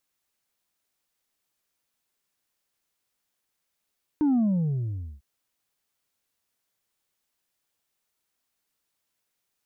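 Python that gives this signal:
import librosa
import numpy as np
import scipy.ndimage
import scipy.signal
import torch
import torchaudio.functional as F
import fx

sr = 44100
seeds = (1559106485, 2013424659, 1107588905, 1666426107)

y = fx.sub_drop(sr, level_db=-19.5, start_hz=310.0, length_s=1.0, drive_db=2.5, fade_s=0.85, end_hz=65.0)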